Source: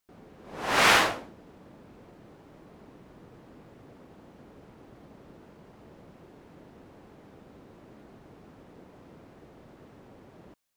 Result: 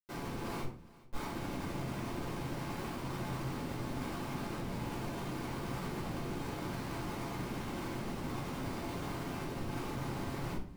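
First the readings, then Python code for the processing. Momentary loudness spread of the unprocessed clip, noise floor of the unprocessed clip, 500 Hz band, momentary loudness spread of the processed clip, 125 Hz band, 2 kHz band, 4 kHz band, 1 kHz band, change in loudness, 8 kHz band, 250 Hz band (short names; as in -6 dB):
18 LU, -54 dBFS, -3.5 dB, 1 LU, +10.0 dB, -14.0 dB, -13.5 dB, -8.5 dB, -17.0 dB, -10.5 dB, +5.5 dB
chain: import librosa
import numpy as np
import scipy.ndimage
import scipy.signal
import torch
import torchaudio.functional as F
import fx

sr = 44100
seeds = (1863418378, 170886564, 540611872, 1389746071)

p1 = fx.highpass(x, sr, hz=180.0, slope=6)
p2 = fx.band_shelf(p1, sr, hz=5900.0, db=-11.0, octaves=1.7)
p3 = fx.hum_notches(p2, sr, base_hz=60, count=5)
p4 = p3 + 0.95 * np.pad(p3, (int(0.9 * sr / 1000.0), 0))[:len(p3)]
p5 = fx.over_compress(p4, sr, threshold_db=-44.0, ratio=-0.5)
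p6 = fx.comb_fb(p5, sr, f0_hz=690.0, decay_s=0.42, harmonics='all', damping=0.0, mix_pct=50)
p7 = fx.tremolo_random(p6, sr, seeds[0], hz=3.5, depth_pct=55)
p8 = fx.schmitt(p7, sr, flips_db=-57.0)
p9 = p8 + fx.echo_single(p8, sr, ms=407, db=-21.0, dry=0)
p10 = fx.room_shoebox(p9, sr, seeds[1], volume_m3=310.0, walls='furnished', distance_m=5.1)
y = p10 * 10.0 ** (1.5 / 20.0)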